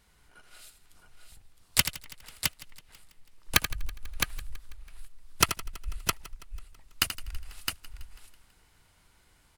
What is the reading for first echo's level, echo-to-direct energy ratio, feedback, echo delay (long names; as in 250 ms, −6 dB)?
−10.5 dB, −4.0 dB, repeats not evenly spaced, 82 ms